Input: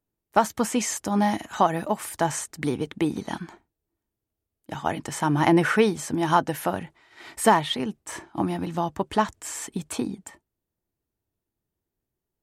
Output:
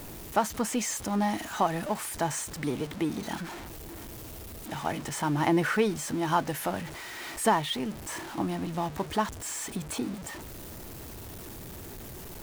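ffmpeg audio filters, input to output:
ffmpeg -i in.wav -af "aeval=exprs='val(0)+0.5*0.0355*sgn(val(0))':channel_layout=same,volume=-6.5dB" out.wav

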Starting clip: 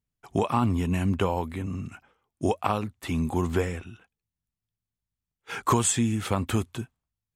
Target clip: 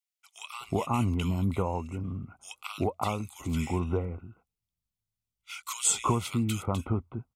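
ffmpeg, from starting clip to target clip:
ffmpeg -i in.wav -filter_complex "[0:a]asuperstop=centerf=1700:order=8:qfactor=3.7,equalizer=frequency=390:width=0.36:gain=-4.5,acrossover=split=1500[link_01][link_02];[link_01]adelay=370[link_03];[link_03][link_02]amix=inputs=2:normalize=0" out.wav

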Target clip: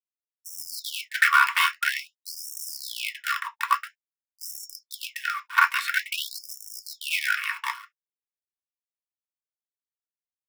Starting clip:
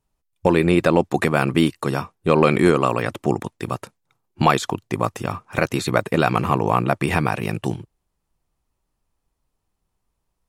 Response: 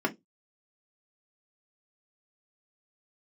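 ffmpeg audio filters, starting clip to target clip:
-filter_complex "[0:a]acrusher=bits=4:dc=4:mix=0:aa=0.000001,alimiter=limit=-7.5dB:level=0:latency=1:release=74[link_01];[1:a]atrim=start_sample=2205,atrim=end_sample=3528[link_02];[link_01][link_02]afir=irnorm=-1:irlink=0,afreqshift=-15,afftfilt=real='re*gte(b*sr/1024,880*pow(5400/880,0.5+0.5*sin(2*PI*0.49*pts/sr)))':imag='im*gte(b*sr/1024,880*pow(5400/880,0.5+0.5*sin(2*PI*0.49*pts/sr)))':win_size=1024:overlap=0.75"

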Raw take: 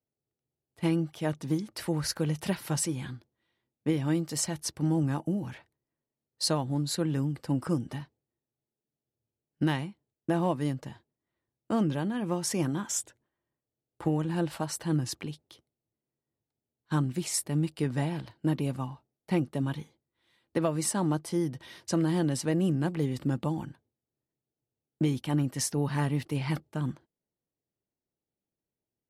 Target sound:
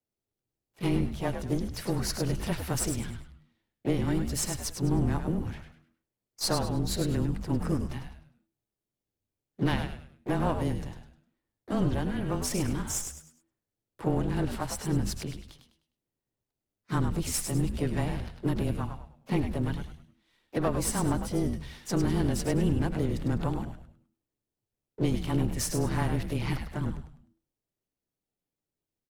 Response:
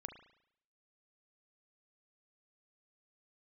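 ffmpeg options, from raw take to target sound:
-filter_complex "[0:a]aeval=exprs='if(lt(val(0),0),0.447*val(0),val(0))':channel_layout=same,afreqshift=-18,asplit=4[link_01][link_02][link_03][link_04];[link_02]asetrate=52444,aresample=44100,atempo=0.840896,volume=-10dB[link_05];[link_03]asetrate=58866,aresample=44100,atempo=0.749154,volume=-15dB[link_06];[link_04]asetrate=66075,aresample=44100,atempo=0.66742,volume=-17dB[link_07];[link_01][link_05][link_06][link_07]amix=inputs=4:normalize=0,asplit=5[link_08][link_09][link_10][link_11][link_12];[link_09]adelay=102,afreqshift=-86,volume=-7dB[link_13];[link_10]adelay=204,afreqshift=-172,volume=-16.9dB[link_14];[link_11]adelay=306,afreqshift=-258,volume=-26.8dB[link_15];[link_12]adelay=408,afreqshift=-344,volume=-36.7dB[link_16];[link_08][link_13][link_14][link_15][link_16]amix=inputs=5:normalize=0,asplit=2[link_17][link_18];[1:a]atrim=start_sample=2205[link_19];[link_18][link_19]afir=irnorm=-1:irlink=0,volume=-12.5dB[link_20];[link_17][link_20]amix=inputs=2:normalize=0"

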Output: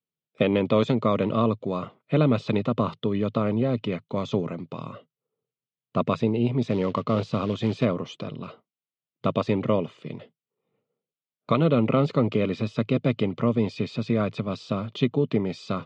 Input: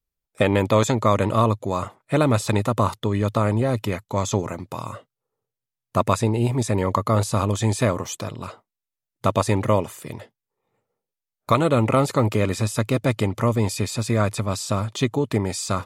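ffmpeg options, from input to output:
ffmpeg -i in.wav -filter_complex "[0:a]asettb=1/sr,asplit=3[link_01][link_02][link_03];[link_01]atrim=end=6.624[link_04];[link_02]atrim=start=6.62:end=7.85,asetpts=PTS-STARTPTS,afade=type=in:duration=0.004:curve=qsin,afade=type=out:start_time=1.226:duration=0.004:curve=qsin,acrusher=bits=4:mode=log:mix=0:aa=0.000001[link_05];[link_03]atrim=start=7.846[link_06];[link_04][link_05]acrossfade=duration=0.004:curve1=hsin:curve2=qsin[link_07];[link_07][link_06]acrossfade=duration=0.004:curve1=qsin:curve2=hsin,highpass=frequency=120:width=0.5412,highpass=frequency=120:width=1.3066,equalizer=frequency=160:width_type=q:width=4:gain=8,equalizer=frequency=240:width_type=q:width=4:gain=5,equalizer=frequency=440:width_type=q:width=4:gain=4,equalizer=frequency=880:width_type=q:width=4:gain=-8,equalizer=frequency=1700:width_type=q:width=4:gain=-8,equalizer=frequency=3000:width_type=q:width=4:gain=4,lowpass=frequency=4000:width=0.5412,lowpass=frequency=4000:width=1.3066,volume=-4dB" out.wav

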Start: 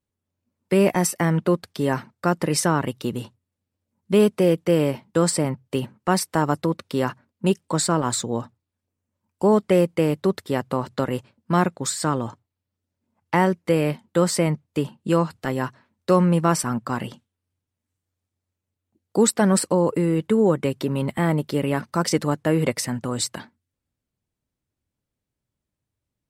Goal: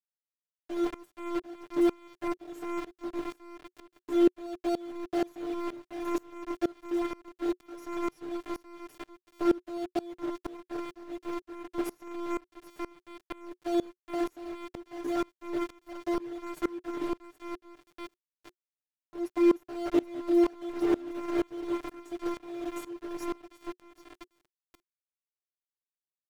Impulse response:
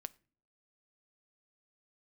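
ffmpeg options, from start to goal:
-af "asetrate=60591,aresample=44100,atempo=0.727827,aecho=1:1:774|1548|2322|3096|3870:0.355|0.153|0.0656|0.0282|0.0121,alimiter=limit=-14dB:level=0:latency=1:release=161,afftfilt=real='hypot(re,im)*cos(PI*b)':imag='0':win_size=512:overlap=0.75,acrusher=bits=4:mix=0:aa=0.000001,aecho=1:1:6.7:0.77,areverse,acompressor=mode=upward:threshold=-38dB:ratio=2.5,areverse,lowpass=frequency=1500:poles=1,equalizer=frequency=360:width=5.4:gain=12.5,aeval=exprs='val(0)*pow(10,-24*if(lt(mod(-2.1*n/s,1),2*abs(-2.1)/1000),1-mod(-2.1*n/s,1)/(2*abs(-2.1)/1000),(mod(-2.1*n/s,1)-2*abs(-2.1)/1000)/(1-2*abs(-2.1)/1000))/20)':channel_layout=same,volume=-2dB"

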